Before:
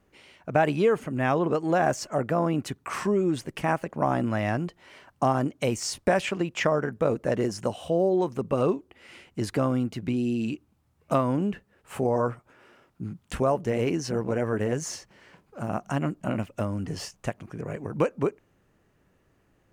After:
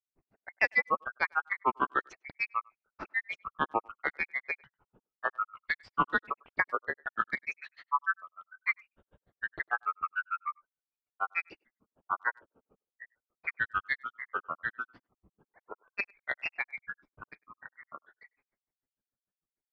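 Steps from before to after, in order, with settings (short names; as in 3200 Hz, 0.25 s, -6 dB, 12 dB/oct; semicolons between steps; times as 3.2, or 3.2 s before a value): band inversion scrambler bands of 2000 Hz; gate -58 dBFS, range -12 dB; LPF 3900 Hz 24 dB/oct; low-pass opened by the level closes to 470 Hz, open at -19.5 dBFS; grains 78 ms, grains 6.7/s, pitch spread up and down by 7 st; dynamic EQ 470 Hz, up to +4 dB, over -47 dBFS, Q 0.96; speakerphone echo 0.1 s, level -28 dB; gain -2.5 dB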